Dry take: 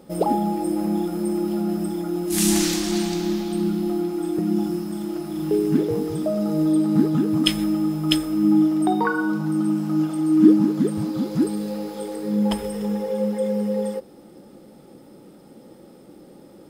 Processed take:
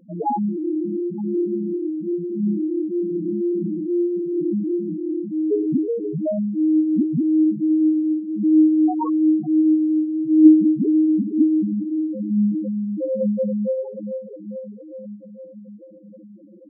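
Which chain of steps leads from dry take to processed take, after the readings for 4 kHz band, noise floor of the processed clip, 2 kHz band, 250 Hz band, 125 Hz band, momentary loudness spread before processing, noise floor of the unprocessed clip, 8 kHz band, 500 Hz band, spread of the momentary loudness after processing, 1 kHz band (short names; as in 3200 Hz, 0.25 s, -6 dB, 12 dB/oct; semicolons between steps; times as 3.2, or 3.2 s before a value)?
under -40 dB, -43 dBFS, under -40 dB, +2.5 dB, -4.0 dB, 8 LU, -47 dBFS, under -40 dB, +1.0 dB, 10 LU, -3.0 dB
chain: diffused feedback echo 0.477 s, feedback 67%, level -7 dB; loudest bins only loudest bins 2; gain +3.5 dB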